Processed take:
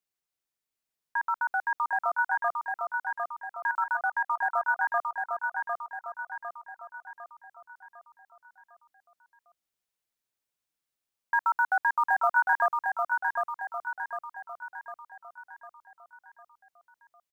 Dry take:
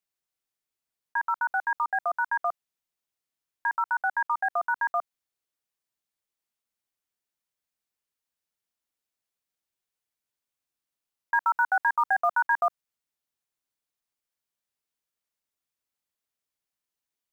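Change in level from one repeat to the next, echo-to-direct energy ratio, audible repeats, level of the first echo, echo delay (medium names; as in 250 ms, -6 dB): -6.0 dB, -3.0 dB, 6, -4.0 dB, 753 ms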